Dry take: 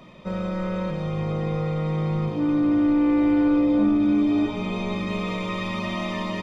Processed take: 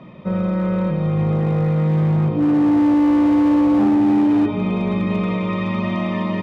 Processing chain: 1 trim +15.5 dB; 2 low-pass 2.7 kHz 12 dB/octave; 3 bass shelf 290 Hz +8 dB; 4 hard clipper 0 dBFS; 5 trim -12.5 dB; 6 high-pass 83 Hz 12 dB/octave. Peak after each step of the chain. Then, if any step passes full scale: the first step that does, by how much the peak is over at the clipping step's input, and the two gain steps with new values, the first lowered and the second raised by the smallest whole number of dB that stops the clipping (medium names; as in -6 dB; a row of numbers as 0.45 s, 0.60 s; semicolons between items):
+4.0 dBFS, +4.0 dBFS, +8.0 dBFS, 0.0 dBFS, -12.5 dBFS, -9.0 dBFS; step 1, 8.0 dB; step 1 +7.5 dB, step 5 -4.5 dB